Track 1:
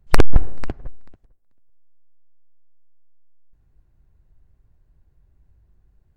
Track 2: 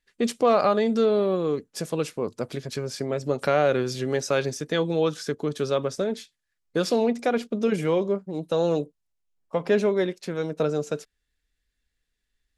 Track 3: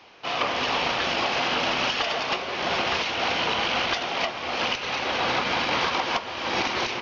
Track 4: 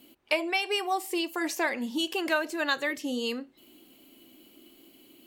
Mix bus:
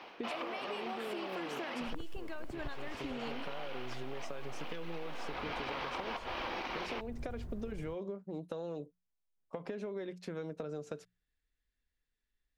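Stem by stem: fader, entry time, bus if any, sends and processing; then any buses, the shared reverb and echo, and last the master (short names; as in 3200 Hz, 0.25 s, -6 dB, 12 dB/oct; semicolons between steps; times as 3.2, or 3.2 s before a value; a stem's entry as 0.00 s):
+0.5 dB, 1.80 s, bus B, no send, AGC gain up to 12 dB; LPF 1500 Hz; three-band squash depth 40%
-6.5 dB, 0.00 s, bus A, no send, low shelf 430 Hz -7.5 dB; notches 60/120/180 Hz; compressor, threshold -24 dBFS, peak gain reduction 7 dB
+3.0 dB, 0.00 s, bus B, no send, HPF 200 Hz 12 dB/oct; high shelf 7000 Hz -9 dB; auto duck -16 dB, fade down 0.60 s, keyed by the fourth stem
-2.0 dB, 0.00 s, bus A, no send, gate with hold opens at -45 dBFS
bus A: 0.0 dB, low shelf 390 Hz +7 dB; compressor, threshold -34 dBFS, peak gain reduction 12 dB
bus B: 0.0 dB, modulation noise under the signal 28 dB; compressor, threshold -28 dBFS, peak gain reduction 16 dB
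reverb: off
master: high shelf 4400 Hz -9.5 dB; compressor, threshold -36 dBFS, peak gain reduction 12.5 dB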